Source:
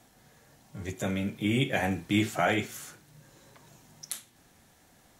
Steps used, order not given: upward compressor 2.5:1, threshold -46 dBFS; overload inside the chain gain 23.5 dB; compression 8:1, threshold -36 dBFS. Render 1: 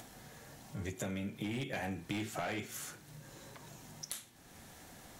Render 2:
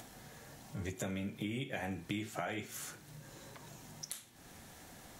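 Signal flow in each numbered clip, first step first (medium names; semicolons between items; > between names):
upward compressor > overload inside the chain > compression; compression > upward compressor > overload inside the chain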